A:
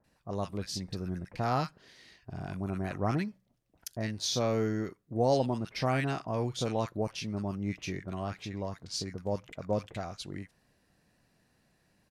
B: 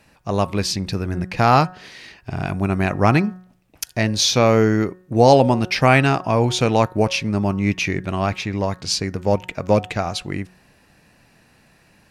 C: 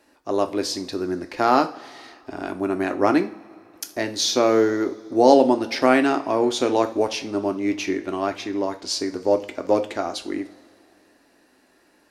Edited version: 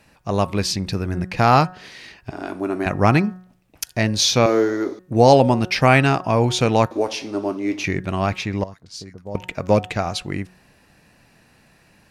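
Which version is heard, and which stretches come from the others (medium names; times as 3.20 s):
B
2.31–2.86 s: from C
4.46–4.99 s: from C
6.91–7.84 s: from C
8.64–9.35 s: from A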